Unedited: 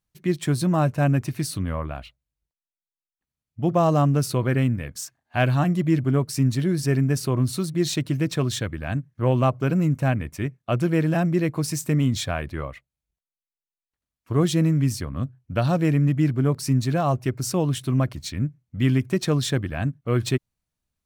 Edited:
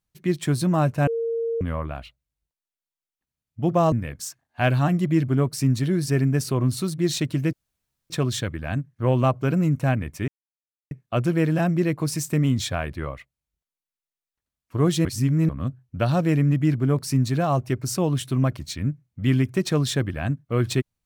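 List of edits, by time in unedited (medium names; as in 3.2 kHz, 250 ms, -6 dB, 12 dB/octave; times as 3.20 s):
1.07–1.61 s: bleep 460 Hz -22.5 dBFS
3.92–4.68 s: delete
8.29 s: insert room tone 0.57 s
10.47 s: insert silence 0.63 s
14.61–15.05 s: reverse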